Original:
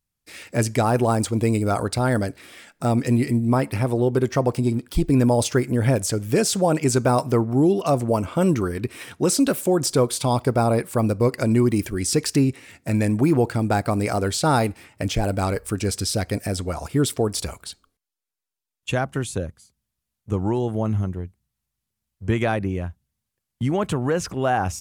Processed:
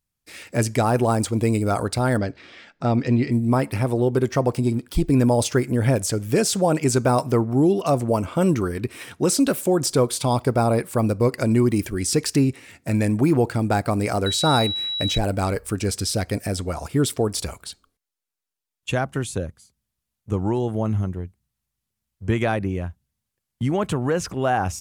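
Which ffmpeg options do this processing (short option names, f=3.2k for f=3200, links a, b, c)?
-filter_complex "[0:a]asettb=1/sr,asplit=3[a][b][c];[a]atrim=end=2.174[d];[b]atrim=start=2.17:end=3.32,asetpts=PTS-STARTPTS,afade=t=in:d=0.004:c=qsin,afade=t=out:st=1.146:d=0.004:c=qsin,lowpass=f=5.3k:w=0.5412,lowpass=f=5.3k:w=1.3066[e];[c]atrim=start=3.316[f];[d][e]acrossfade=d=0.004:c1=hsin:c2=qsin[g];[g][f]acrossfade=d=0.004:c1=qsin:c2=hsin,asettb=1/sr,asplit=3[h][i][j];[h]atrim=end=14.264[k];[i]atrim=start=14.26:end=15.18,asetpts=PTS-STARTPTS,afade=t=in:d=0.004:c=qsin,afade=t=out:st=0.916:d=0.004:c=qsin,aeval=exprs='val(0)+0.0631*sin(2*PI*3900*n/s)':c=same[l];[j]atrim=start=15.176[m];[k][l]acrossfade=d=0.004:c1=hsin:c2=qsin[n];[n][m]acrossfade=d=0.004:c1=qsin:c2=hsin"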